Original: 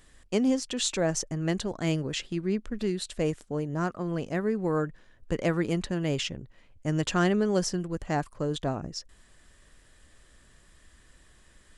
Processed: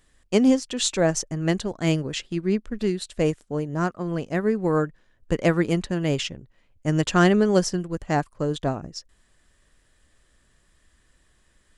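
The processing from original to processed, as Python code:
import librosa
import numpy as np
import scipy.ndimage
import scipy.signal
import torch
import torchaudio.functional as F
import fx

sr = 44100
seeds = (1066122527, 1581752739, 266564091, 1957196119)

y = fx.upward_expand(x, sr, threshold_db=-46.0, expansion=1.5)
y = y * 10.0 ** (7.5 / 20.0)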